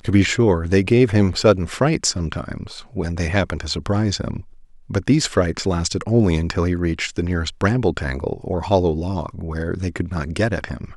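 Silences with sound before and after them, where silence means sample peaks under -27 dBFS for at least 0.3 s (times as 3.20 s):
4.41–4.90 s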